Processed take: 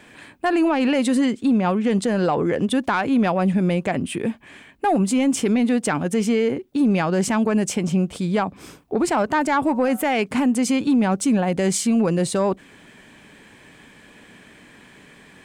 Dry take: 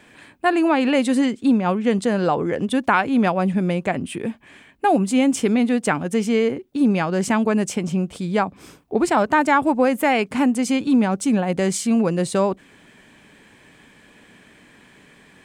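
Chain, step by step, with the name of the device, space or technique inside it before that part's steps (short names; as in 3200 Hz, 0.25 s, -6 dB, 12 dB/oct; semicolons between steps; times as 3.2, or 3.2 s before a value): 9.59–10.06 de-hum 187.7 Hz, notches 9; soft clipper into limiter (soft clip -9 dBFS, distortion -22 dB; limiter -15 dBFS, peak gain reduction 5 dB); gain +2.5 dB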